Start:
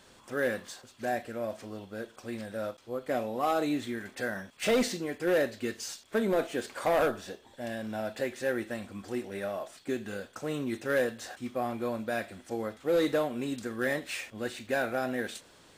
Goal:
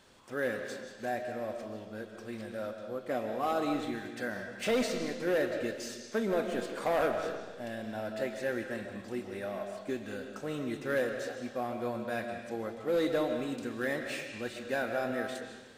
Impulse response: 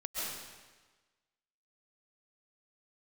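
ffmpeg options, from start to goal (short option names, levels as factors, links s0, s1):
-filter_complex "[0:a]asplit=2[s0][s1];[1:a]atrim=start_sample=2205,lowpass=6600[s2];[s1][s2]afir=irnorm=-1:irlink=0,volume=0.501[s3];[s0][s3]amix=inputs=2:normalize=0,volume=0.531"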